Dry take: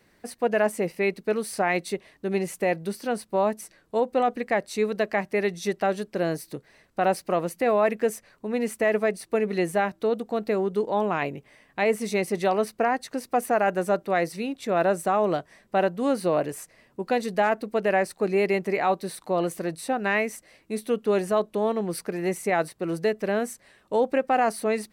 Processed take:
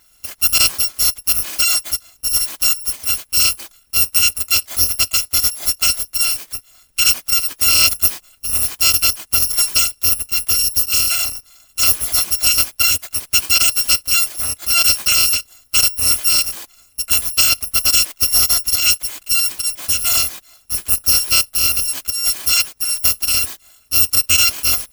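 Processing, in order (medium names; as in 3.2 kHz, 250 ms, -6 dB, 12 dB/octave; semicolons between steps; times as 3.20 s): bit-reversed sample order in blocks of 256 samples; trim +8.5 dB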